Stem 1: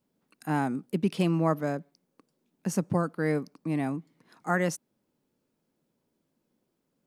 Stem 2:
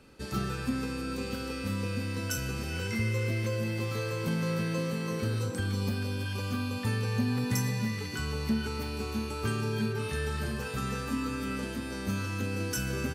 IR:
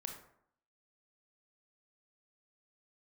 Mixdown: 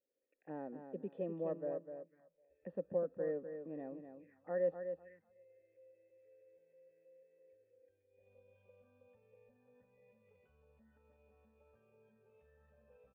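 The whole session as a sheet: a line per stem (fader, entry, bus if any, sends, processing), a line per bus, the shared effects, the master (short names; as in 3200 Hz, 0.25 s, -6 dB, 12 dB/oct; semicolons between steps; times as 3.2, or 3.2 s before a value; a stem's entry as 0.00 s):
0.0 dB, 0.00 s, no send, echo send -8 dB, dry
8.08 s -22 dB -> 8.3 s -11 dB, 2.30 s, no send, no echo send, limiter -27.5 dBFS, peak gain reduction 9 dB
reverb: off
echo: feedback echo 0.251 s, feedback 23%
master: bell 120 Hz -12 dB 0.6 oct; envelope phaser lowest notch 170 Hz, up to 2200 Hz, full sweep at -33.5 dBFS; vocal tract filter e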